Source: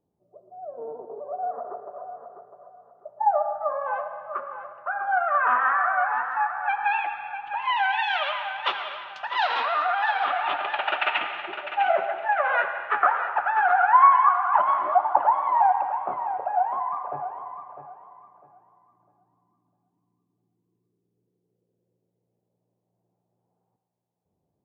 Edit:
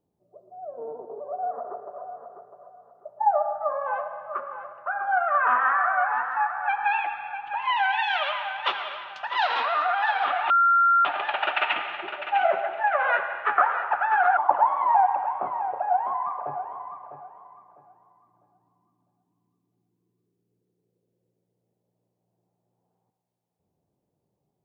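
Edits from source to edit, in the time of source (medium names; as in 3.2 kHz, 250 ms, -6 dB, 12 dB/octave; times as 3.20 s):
10.50 s: add tone 1.38 kHz -15.5 dBFS 0.55 s
13.82–15.03 s: delete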